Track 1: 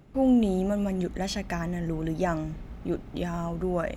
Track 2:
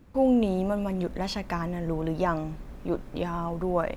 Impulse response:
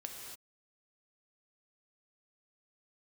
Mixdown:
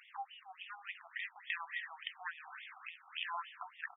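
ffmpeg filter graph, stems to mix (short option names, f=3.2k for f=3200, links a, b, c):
-filter_complex "[0:a]tiltshelf=f=890:g=-7.5,volume=-5dB,asplit=2[a][b];[b]volume=-4.5dB[c];[1:a]adelay=0.5,volume=-3dB[d];[2:a]atrim=start_sample=2205[e];[c][e]afir=irnorm=-1:irlink=0[f];[a][d][f]amix=inputs=3:normalize=0,equalizer=f=3.2k:w=0.64:g=12.5,acrossover=split=160[g][h];[h]acompressor=threshold=-34dB:ratio=5[i];[g][i]amix=inputs=2:normalize=0,afftfilt=real='re*between(b*sr/1024,960*pow(2600/960,0.5+0.5*sin(2*PI*3.5*pts/sr))/1.41,960*pow(2600/960,0.5+0.5*sin(2*PI*3.5*pts/sr))*1.41)':imag='im*between(b*sr/1024,960*pow(2600/960,0.5+0.5*sin(2*PI*3.5*pts/sr))/1.41,960*pow(2600/960,0.5+0.5*sin(2*PI*3.5*pts/sr))*1.41)':win_size=1024:overlap=0.75"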